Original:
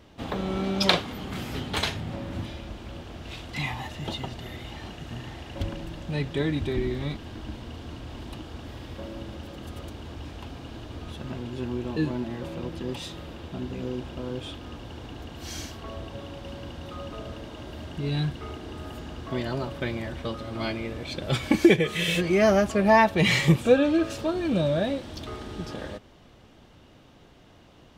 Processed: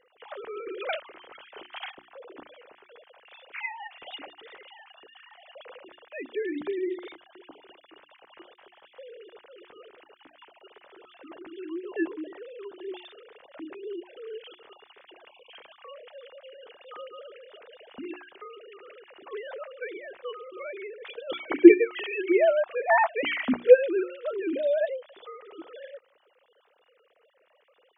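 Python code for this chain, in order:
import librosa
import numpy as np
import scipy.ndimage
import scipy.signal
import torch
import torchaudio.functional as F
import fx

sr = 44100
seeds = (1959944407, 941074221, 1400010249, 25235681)

y = fx.sine_speech(x, sr)
y = fx.hum_notches(y, sr, base_hz=60, count=6)
y = fx.spec_erase(y, sr, start_s=15.3, length_s=0.22, low_hz=1100.0, high_hz=2200.0)
y = y * 10.0 ** (-1.0 / 20.0)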